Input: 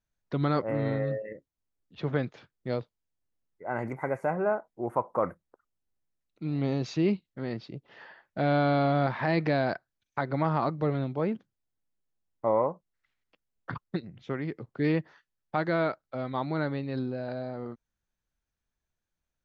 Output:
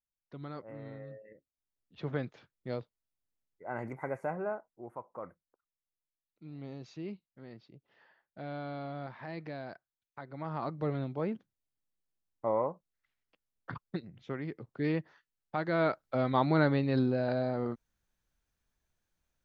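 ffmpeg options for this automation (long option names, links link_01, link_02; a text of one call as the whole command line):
ffmpeg -i in.wav -af "volume=13.5dB,afade=type=in:start_time=1.21:duration=0.81:silence=0.298538,afade=type=out:start_time=4.22:duration=0.72:silence=0.334965,afade=type=in:start_time=10.34:duration=0.54:silence=0.298538,afade=type=in:start_time=15.67:duration=0.48:silence=0.354813" out.wav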